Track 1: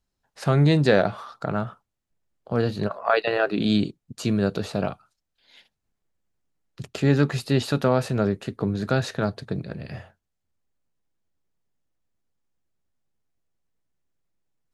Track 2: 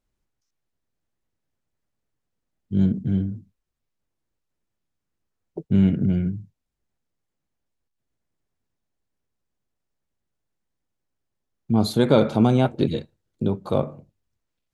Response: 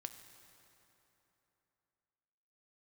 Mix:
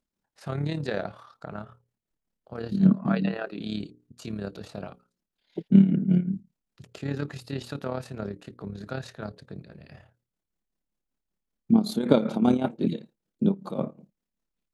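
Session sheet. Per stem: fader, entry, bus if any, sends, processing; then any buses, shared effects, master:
−8.5 dB, 0.00 s, no send, mains-hum notches 60/120/180/240/300/360/420/480/540 Hz
0.0 dB, 0.00 s, no send, low shelf with overshoot 130 Hz −13.5 dB, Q 3; amplitude tremolo 5.2 Hz, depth 77%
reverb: not used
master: amplitude modulation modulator 36 Hz, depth 45%

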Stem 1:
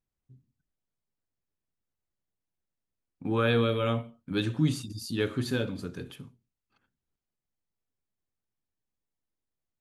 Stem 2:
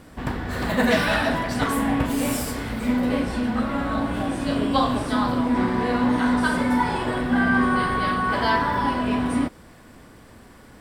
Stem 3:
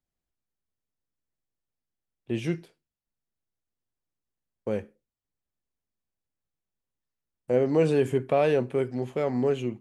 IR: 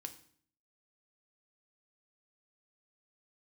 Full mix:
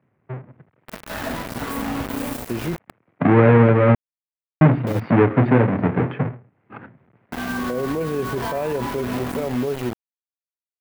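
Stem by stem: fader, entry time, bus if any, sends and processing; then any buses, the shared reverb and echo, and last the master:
+2.0 dB, 0.00 s, muted 0:03.95–0:04.61, no bus, no send, each half-wave held at its own peak; elliptic band-pass filter 110–2,200 Hz, stop band 50 dB; multiband upward and downward compressor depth 70%
−14.0 dB, 0.00 s, bus A, no send, automatic ducking −20 dB, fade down 0.55 s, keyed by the first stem
−4.0 dB, 0.20 s, bus A, no send, no processing
bus A: 0.0 dB, bit reduction 6 bits; brickwall limiter −26 dBFS, peak gain reduction 11.5 dB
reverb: not used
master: parametric band 6,400 Hz −9 dB 2.6 octaves; automatic gain control gain up to 10 dB

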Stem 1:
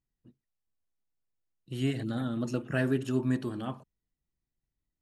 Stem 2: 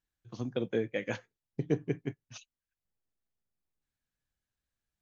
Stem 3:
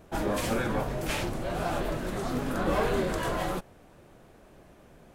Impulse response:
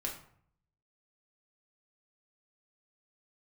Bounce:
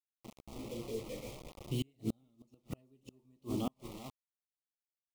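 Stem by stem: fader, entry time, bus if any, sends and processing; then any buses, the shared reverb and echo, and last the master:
+0.5 dB, 0.00 s, no bus, send −24 dB, echo send −13.5 dB, no processing
−6.5 dB, 0.15 s, bus A, send −7.5 dB, echo send −21.5 dB, no processing
−6.0 dB, 0.00 s, bus A, no send, echo send −14.5 dB, Butterworth low-pass 600 Hz 36 dB per octave; parametric band 64 Hz +4.5 dB 0.4 octaves; automatic ducking −10 dB, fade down 1.30 s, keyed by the first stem
bus A: 0.0 dB, spectral peaks only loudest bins 1; brickwall limiter −48.5 dBFS, peak gain reduction 11.5 dB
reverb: on, RT60 0.60 s, pre-delay 4 ms
echo: single-tap delay 376 ms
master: bit reduction 8 bits; gate with flip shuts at −23 dBFS, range −39 dB; Butterworth band-reject 1,600 Hz, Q 1.6

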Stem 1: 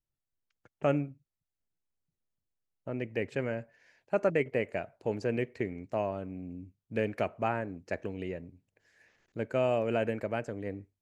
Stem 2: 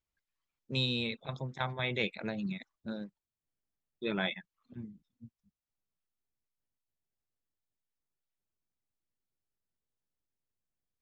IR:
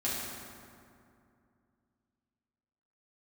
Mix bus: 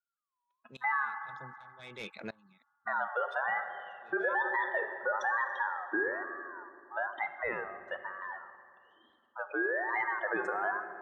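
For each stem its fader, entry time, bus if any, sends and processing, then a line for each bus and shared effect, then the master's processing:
0:05.65 −6.5 dB → 0:06.44 −14.5 dB → 0:09.83 −14.5 dB → 0:10.45 −4.5 dB, 0.00 s, send −14 dB, expanding power law on the bin magnitudes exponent 2.6; automatic gain control gain up to 12 dB; ring modulator whose carrier an LFO sweeps 1,200 Hz, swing 20%, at 1.1 Hz
+2.5 dB, 0.00 s, no send, low-shelf EQ 160 Hz −11.5 dB; soft clipping −26 dBFS, distortion −15 dB; tremolo with a ramp in dB swelling 1.3 Hz, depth 26 dB; automatic ducking −12 dB, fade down 0.70 s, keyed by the first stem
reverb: on, RT60 2.5 s, pre-delay 4 ms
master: brickwall limiter −22 dBFS, peak gain reduction 9.5 dB

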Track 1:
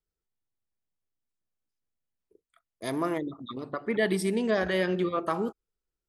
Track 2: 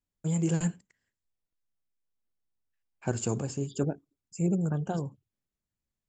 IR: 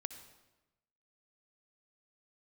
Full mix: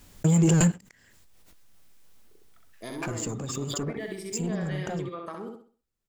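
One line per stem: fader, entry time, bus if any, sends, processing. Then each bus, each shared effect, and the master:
−2.5 dB, 0.00 s, no send, echo send −3.5 dB, downward compressor 5 to 1, threshold −33 dBFS, peak gain reduction 11 dB
−0.5 dB, 0.00 s, no send, no echo send, automatic gain control gain up to 10.5 dB; leveller curve on the samples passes 2; background raised ahead of every attack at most 23 dB per second; automatic ducking −19 dB, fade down 1.05 s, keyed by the first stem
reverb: not used
echo: repeating echo 65 ms, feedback 33%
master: downward compressor 10 to 1, threshold −17 dBFS, peak gain reduction 8 dB

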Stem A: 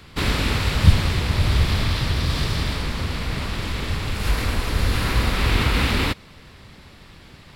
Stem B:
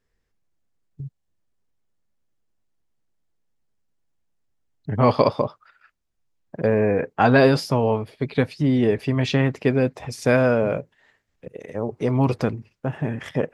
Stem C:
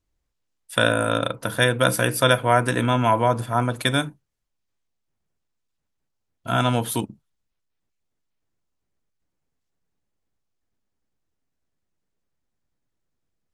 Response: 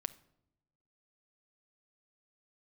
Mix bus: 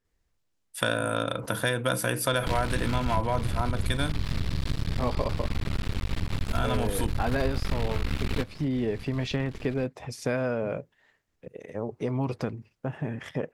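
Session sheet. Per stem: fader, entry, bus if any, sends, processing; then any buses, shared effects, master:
+1.5 dB, 2.30 s, no send, low-shelf EQ 190 Hz +10 dB; downward compressor, threshold −15 dBFS, peak gain reduction 16 dB; half-wave rectification
−5.0 dB, 0.00 s, no send, no processing
−1.5 dB, 0.05 s, no send, harmonic generator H 5 −27 dB, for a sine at −2.5 dBFS; level that may fall only so fast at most 140 dB per second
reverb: not used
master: downward compressor 2.5 to 1, threshold −26 dBFS, peak gain reduction 10.5 dB

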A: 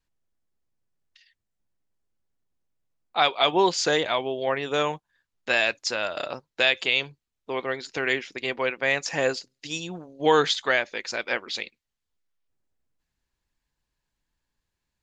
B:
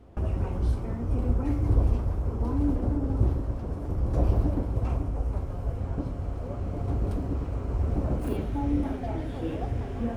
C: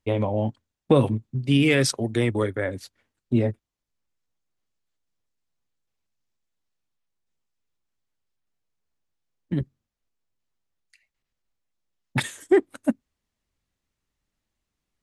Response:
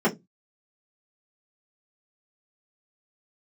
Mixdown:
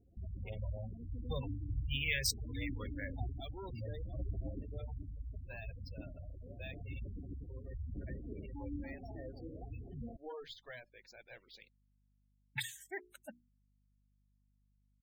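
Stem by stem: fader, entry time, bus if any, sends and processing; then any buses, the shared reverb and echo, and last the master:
−19.5 dB, 0.00 s, no send, parametric band 120 Hz −3.5 dB 0.59 octaves; tube saturation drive 18 dB, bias 0.8; mains hum 50 Hz, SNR 21 dB
−16.0 dB, 0.00 s, no send, high-shelf EQ 3,300 Hz +10 dB
−5.0 dB, 0.40 s, no send, guitar amp tone stack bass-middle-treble 10-0-10; mains-hum notches 60/120/180/240/300/360/420 Hz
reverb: not used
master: parametric band 1,200 Hz −4.5 dB 0.73 octaves; gate on every frequency bin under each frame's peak −15 dB strong; linearly interpolated sample-rate reduction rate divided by 2×

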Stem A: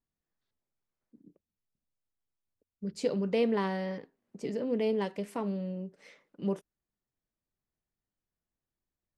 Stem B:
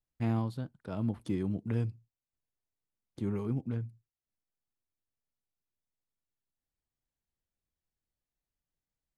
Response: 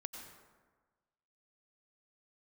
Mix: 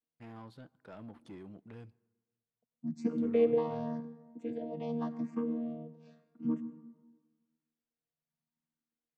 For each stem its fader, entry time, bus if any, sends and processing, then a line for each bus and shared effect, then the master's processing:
−1.5 dB, 0.00 s, send −4 dB, channel vocoder with a chord as carrier bare fifth, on D#3; frequency shifter mixed with the dry sound +0.89 Hz
−18.0 dB, 0.00 s, send −19.5 dB, speech leveller 0.5 s; mid-hump overdrive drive 20 dB, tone 2,400 Hz, clips at −21 dBFS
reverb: on, RT60 1.4 s, pre-delay 82 ms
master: no processing

